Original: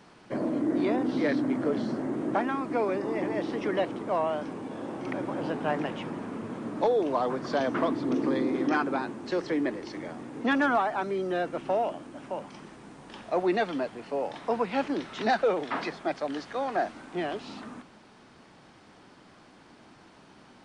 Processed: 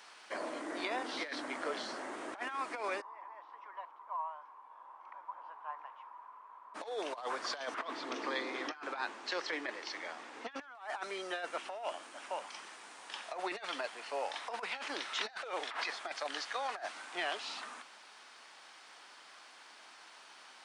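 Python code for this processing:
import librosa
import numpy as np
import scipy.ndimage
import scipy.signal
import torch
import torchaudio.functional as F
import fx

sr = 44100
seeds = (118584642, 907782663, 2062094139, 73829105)

y = fx.bandpass_q(x, sr, hz=1000.0, q=10.0, at=(3.0, 6.74), fade=0.02)
y = fx.lowpass(y, sr, hz=6000.0, slope=12, at=(7.79, 10.75))
y = scipy.signal.sosfilt(scipy.signal.butter(2, 870.0, 'highpass', fs=sr, output='sos'), y)
y = fx.high_shelf(y, sr, hz=2000.0, db=6.0)
y = fx.over_compress(y, sr, threshold_db=-35.0, ratio=-0.5)
y = y * librosa.db_to_amplitude(-2.5)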